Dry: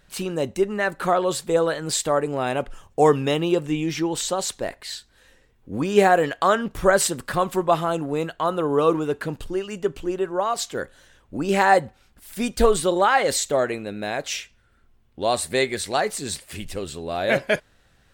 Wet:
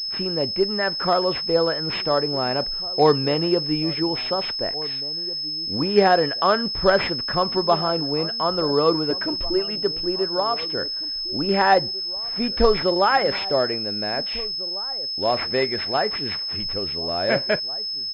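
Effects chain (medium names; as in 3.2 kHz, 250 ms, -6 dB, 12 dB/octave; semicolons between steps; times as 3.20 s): 9.10–9.78 s: comb 3.2 ms, depth 89%; echo from a far wall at 300 m, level -17 dB; class-D stage that switches slowly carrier 5.2 kHz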